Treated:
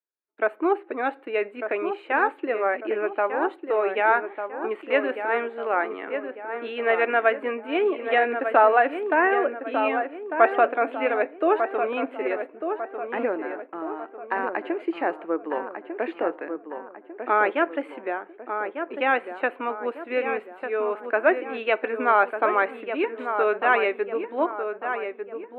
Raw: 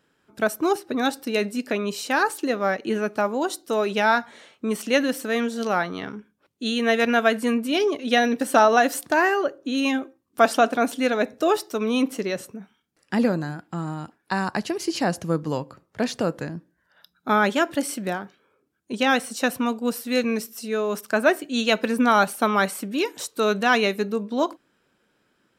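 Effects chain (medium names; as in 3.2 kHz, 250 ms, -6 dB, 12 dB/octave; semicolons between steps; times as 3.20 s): gate -46 dBFS, range -33 dB; elliptic band-pass 330–2400 Hz, stop band 40 dB; on a send: filtered feedback delay 1198 ms, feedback 47%, low-pass 1.9 kHz, level -7 dB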